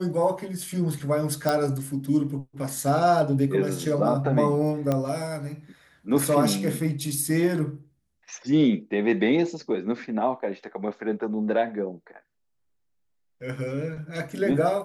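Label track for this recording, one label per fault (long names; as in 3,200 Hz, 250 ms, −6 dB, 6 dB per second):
1.490000	1.490000	click
4.920000	4.920000	click −13 dBFS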